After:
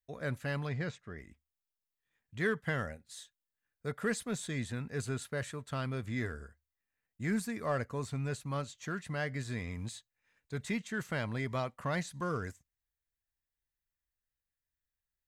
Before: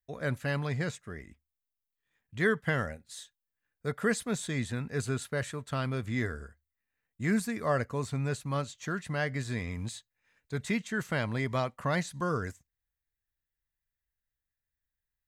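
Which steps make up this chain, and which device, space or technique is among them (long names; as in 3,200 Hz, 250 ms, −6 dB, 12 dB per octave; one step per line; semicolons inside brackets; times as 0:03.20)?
0:00.69–0:01.18: low-pass filter 4,800 Hz 12 dB per octave
parallel distortion (in parallel at −10 dB: hard clipping −29.5 dBFS, distortion −9 dB)
on the sum: level −6 dB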